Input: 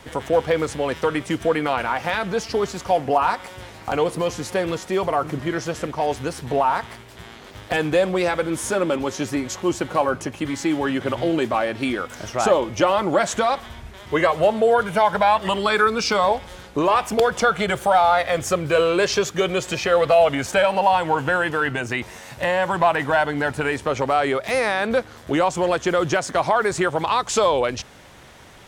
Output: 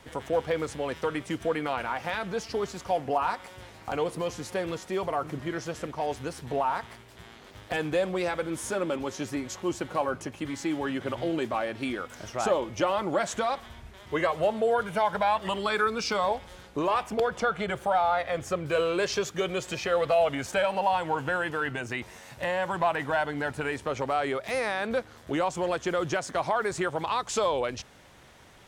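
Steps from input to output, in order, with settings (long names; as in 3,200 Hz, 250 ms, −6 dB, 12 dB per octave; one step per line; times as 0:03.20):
0:17.03–0:18.66: high-shelf EQ 4,200 Hz −8 dB
level −8 dB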